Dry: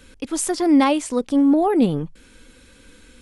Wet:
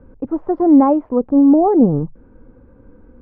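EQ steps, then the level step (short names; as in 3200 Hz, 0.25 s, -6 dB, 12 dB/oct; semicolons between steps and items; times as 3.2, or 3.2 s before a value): LPF 1000 Hz 24 dB/oct; bell 120 Hz +9 dB 0.27 oct; +5.0 dB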